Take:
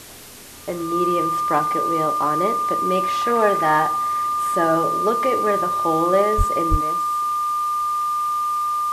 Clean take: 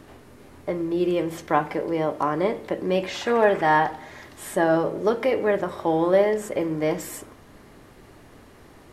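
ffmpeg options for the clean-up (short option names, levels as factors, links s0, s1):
-filter_complex "[0:a]bandreject=f=1200:w=30,asplit=3[s0][s1][s2];[s0]afade=t=out:st=6.37:d=0.02[s3];[s1]highpass=f=140:w=0.5412,highpass=f=140:w=1.3066,afade=t=in:st=6.37:d=0.02,afade=t=out:st=6.49:d=0.02[s4];[s2]afade=t=in:st=6.49:d=0.02[s5];[s3][s4][s5]amix=inputs=3:normalize=0,asplit=3[s6][s7][s8];[s6]afade=t=out:st=6.7:d=0.02[s9];[s7]highpass=f=140:w=0.5412,highpass=f=140:w=1.3066,afade=t=in:st=6.7:d=0.02,afade=t=out:st=6.82:d=0.02[s10];[s8]afade=t=in:st=6.82:d=0.02[s11];[s9][s10][s11]amix=inputs=3:normalize=0,afwtdn=0.01,asetnsamples=n=441:p=0,asendcmd='6.81 volume volume 10dB',volume=1"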